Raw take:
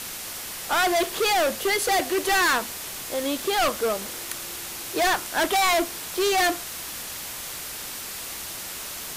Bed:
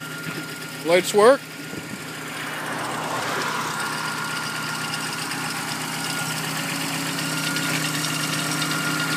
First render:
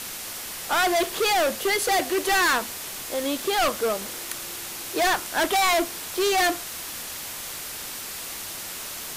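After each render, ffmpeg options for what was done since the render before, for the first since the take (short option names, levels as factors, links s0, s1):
-af "bandreject=f=60:t=h:w=4,bandreject=f=120:t=h:w=4,bandreject=f=180:t=h:w=4"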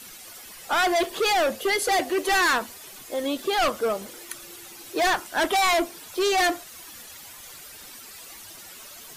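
-af "afftdn=nr=12:nf=-35"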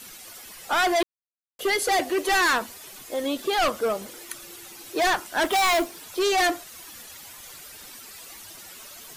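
-filter_complex "[0:a]asettb=1/sr,asplit=3[s0][s1][s2];[s0]atrim=end=5.454[s3];[s1]atrim=start=5.45:end=6.03,asetpts=PTS-STARTPTS,afade=t=in:d=0.004:c=qsin,afade=t=out:st=0.576:d=0.004:c=qsin,acrusher=bits=4:mode=log:mix=0:aa=0.000001[s4];[s2]atrim=start=6.026[s5];[s3][s4]acrossfade=d=0.004:c1=hsin:c2=qsin[s6];[s6][s5]acrossfade=d=0.004:c1=qsin:c2=hsin,asplit=3[s7][s8][s9];[s7]atrim=end=1.03,asetpts=PTS-STARTPTS,afade=t=out:st=1.026:d=0.004:c=hsin[s10];[s8]atrim=start=1.03:end=1.59,asetpts=PTS-STARTPTS,volume=0[s11];[s9]atrim=start=1.59,asetpts=PTS-STARTPTS,afade=t=in:d=0.004:c=hsin[s12];[s10][s11][s12]concat=n=3:v=0:a=1"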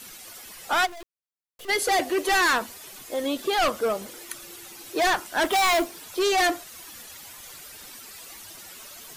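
-filter_complex "[0:a]asplit=3[s0][s1][s2];[s0]afade=t=out:st=0.85:d=0.02[s3];[s1]aeval=exprs='(tanh(112*val(0)+0.7)-tanh(0.7))/112':c=same,afade=t=in:st=0.85:d=0.02,afade=t=out:st=1.68:d=0.02[s4];[s2]afade=t=in:st=1.68:d=0.02[s5];[s3][s4][s5]amix=inputs=3:normalize=0"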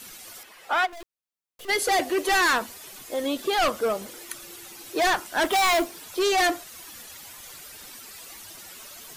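-filter_complex "[0:a]asettb=1/sr,asplit=3[s0][s1][s2];[s0]atrim=end=0.434[s3];[s1]atrim=start=0.43:end=0.93,asetpts=PTS-STARTPTS,afade=t=in:d=0.004:c=qsin,afade=t=out:st=0.496:d=0.004:c=qsin,bass=f=250:g=-15,treble=f=4000:g=-12[s4];[s2]atrim=start=0.926[s5];[s3][s4]acrossfade=d=0.004:c1=hsin:c2=qsin[s6];[s6][s5]acrossfade=d=0.004:c1=qsin:c2=hsin"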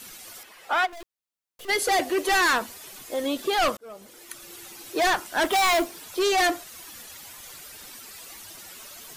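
-filter_complex "[0:a]asplit=2[s0][s1];[s0]atrim=end=3.77,asetpts=PTS-STARTPTS,afade=t=out:st=3.766:d=0.004:c=hsin[s2];[s1]atrim=start=3.77,asetpts=PTS-STARTPTS,afade=t=in:d=0.83[s3];[s2][s3]concat=n=2:v=0:a=1"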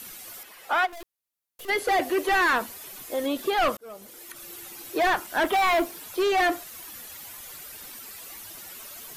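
-filter_complex "[0:a]acrossover=split=3200[s0][s1];[s1]acompressor=threshold=0.00794:ratio=4:attack=1:release=60[s2];[s0][s2]amix=inputs=2:normalize=0,equalizer=f=13000:t=o:w=0.64:g=8"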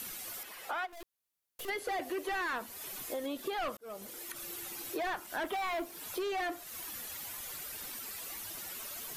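-af "alimiter=limit=0.106:level=0:latency=1:release=378,acompressor=threshold=0.0112:ratio=2.5"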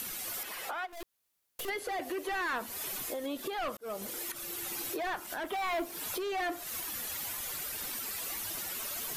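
-filter_complex "[0:a]asplit=2[s0][s1];[s1]acompressor=threshold=0.00708:ratio=6,volume=1.33[s2];[s0][s2]amix=inputs=2:normalize=0,alimiter=level_in=1.41:limit=0.0631:level=0:latency=1:release=448,volume=0.708"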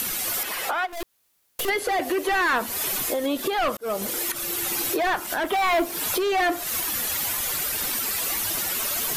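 -af "volume=3.76"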